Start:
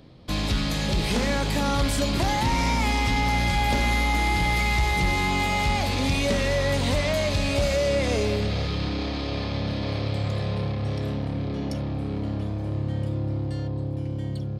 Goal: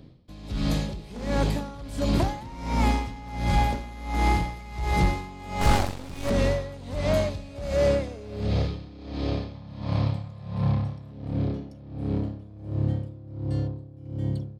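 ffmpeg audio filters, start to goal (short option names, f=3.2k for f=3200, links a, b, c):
-filter_complex "[0:a]asettb=1/sr,asplit=3[a][b][c];[a]atrim=end=5.614[d];[b]atrim=start=5.61:end=6.3,asetpts=PTS-STARTPTS,afade=t=in:d=0.004:c=qsin,afade=t=out:st=0.686:d=0.004:c=qsin,aeval=exprs='0.188*(cos(1*acos(clip(val(0)/0.188,-1,1)))-cos(1*PI/2))+0.0376*(cos(6*acos(clip(val(0)/0.188,-1,1)))-cos(6*PI/2))+0.0473*(cos(7*acos(clip(val(0)/0.188,-1,1)))-cos(7*PI/2))':c=same[e];[c]atrim=start=6.296[f];[d][e]acrossfade=d=0.004:c1=hsin:c2=qsin[g];[g][f]acrossfade=d=0.004:c1=qsin:c2=hsin,asettb=1/sr,asplit=3[h][i][j];[h]atrim=end=9.554[k];[i]atrim=start=9.55:end=11.12,asetpts=PTS-STARTPTS,afade=t=in:d=0.004:c=qsin,afade=t=out:st=1.566:d=0.004:c=qsin,equalizer=f=160:t=o:w=0.67:g=6,equalizer=f=400:t=o:w=0.67:g=-11,equalizer=f=1k:t=o:w=0.67:g=8[l];[j]atrim=start=11.116[m];[k][l]acrossfade=d=0.004:c1=hsin:c2=qsin[n];[n][m]acrossfade=d=0.004:c1=qsin:c2=hsin,asplit=2[o][p];[p]adynamicsmooth=sensitivity=1:basefreq=500,volume=2.5dB[q];[o][q]amix=inputs=2:normalize=0,aeval=exprs='val(0)*pow(10,-20*(0.5-0.5*cos(2*PI*1.4*n/s))/20)':c=same,volume=-3.5dB"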